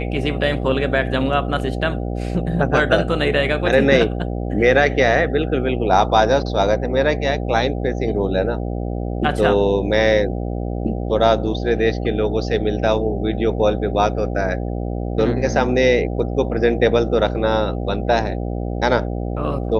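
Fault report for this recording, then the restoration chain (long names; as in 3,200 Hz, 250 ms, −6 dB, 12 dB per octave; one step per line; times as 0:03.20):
mains buzz 60 Hz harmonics 13 −24 dBFS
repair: hum removal 60 Hz, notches 13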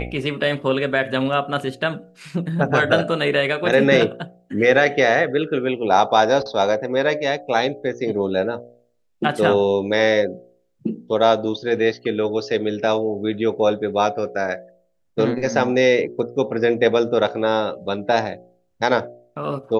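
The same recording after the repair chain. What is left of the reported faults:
none of them is left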